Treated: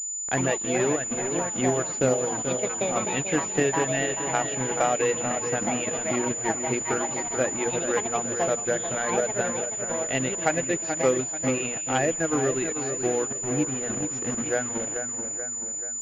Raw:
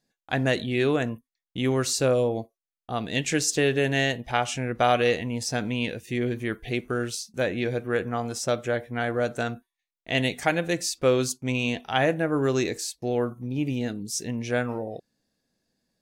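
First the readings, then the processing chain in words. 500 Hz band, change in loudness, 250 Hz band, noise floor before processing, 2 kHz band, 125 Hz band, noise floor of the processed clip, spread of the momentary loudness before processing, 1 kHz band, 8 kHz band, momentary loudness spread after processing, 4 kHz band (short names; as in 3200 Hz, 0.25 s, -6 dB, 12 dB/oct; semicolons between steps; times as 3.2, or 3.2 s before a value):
0.0 dB, +1.0 dB, -1.0 dB, under -85 dBFS, -1.5 dB, -4.0 dB, -32 dBFS, 8 LU, +1.5 dB, +10.0 dB, 4 LU, -7.0 dB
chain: notches 60/120/180/240 Hz; reverb removal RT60 0.91 s; HPF 110 Hz 12 dB/oct; echoes that change speed 0.13 s, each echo +5 st, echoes 2, each echo -6 dB; in parallel at +0.5 dB: limiter -18.5 dBFS, peak gain reduction 11 dB; on the sum: bit-crush 5-bit; air absorption 140 m; split-band echo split 2400 Hz, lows 0.433 s, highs 0.162 s, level -7 dB; transient shaper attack +4 dB, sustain -7 dB; pulse-width modulation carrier 7000 Hz; gain -5.5 dB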